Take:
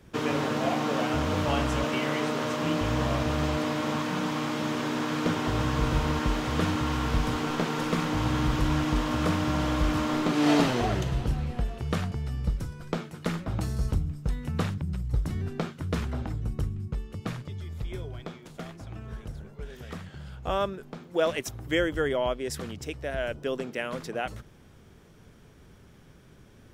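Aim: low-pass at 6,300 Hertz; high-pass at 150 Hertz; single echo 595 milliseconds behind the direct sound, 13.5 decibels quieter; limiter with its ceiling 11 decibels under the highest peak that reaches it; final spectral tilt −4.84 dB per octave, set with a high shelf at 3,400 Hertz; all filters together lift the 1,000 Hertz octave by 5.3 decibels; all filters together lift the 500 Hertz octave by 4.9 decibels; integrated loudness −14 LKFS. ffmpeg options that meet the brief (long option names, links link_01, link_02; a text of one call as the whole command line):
ffmpeg -i in.wav -af "highpass=150,lowpass=6300,equalizer=frequency=500:width_type=o:gain=4.5,equalizer=frequency=1000:width_type=o:gain=4.5,highshelf=frequency=3400:gain=8,alimiter=limit=-19.5dB:level=0:latency=1,aecho=1:1:595:0.211,volume=16.5dB" out.wav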